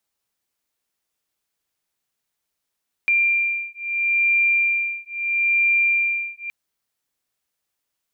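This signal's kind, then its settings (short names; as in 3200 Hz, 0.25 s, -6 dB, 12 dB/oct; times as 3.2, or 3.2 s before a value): beating tones 2380 Hz, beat 0.76 Hz, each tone -20.5 dBFS 3.42 s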